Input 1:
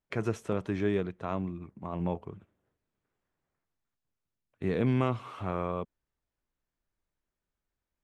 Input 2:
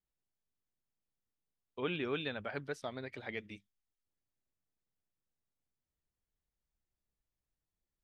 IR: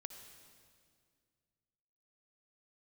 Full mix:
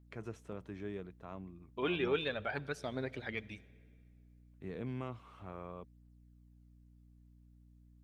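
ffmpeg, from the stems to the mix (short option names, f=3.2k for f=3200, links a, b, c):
-filter_complex "[0:a]aeval=exprs='val(0)+0.00501*(sin(2*PI*60*n/s)+sin(2*PI*2*60*n/s)/2+sin(2*PI*3*60*n/s)/3+sin(2*PI*4*60*n/s)/4+sin(2*PI*5*60*n/s)/5)':c=same,volume=-14dB[a];[1:a]aphaser=in_gain=1:out_gain=1:delay=3.7:decay=0.45:speed=0.33:type=triangular,volume=-0.5dB,asplit=2[b][c];[c]volume=-8.5dB[d];[2:a]atrim=start_sample=2205[e];[d][e]afir=irnorm=-1:irlink=0[f];[a][b][f]amix=inputs=3:normalize=0"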